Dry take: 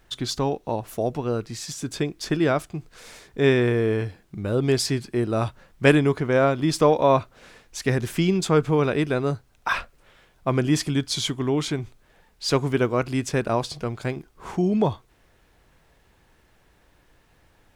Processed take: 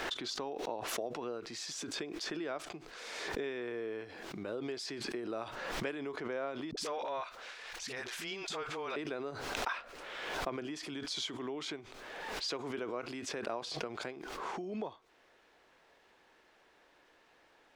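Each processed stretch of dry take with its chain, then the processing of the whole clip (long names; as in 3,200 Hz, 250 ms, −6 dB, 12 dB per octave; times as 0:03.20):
0:06.71–0:08.96: parametric band 240 Hz −14.5 dB 2.7 octaves + transient designer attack −9 dB, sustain +8 dB + all-pass dispersion highs, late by 61 ms, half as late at 380 Hz
whole clip: downward compressor, threshold −33 dBFS; three-way crossover with the lows and the highs turned down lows −23 dB, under 280 Hz, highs −14 dB, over 6,400 Hz; background raised ahead of every attack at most 30 dB per second; level −2 dB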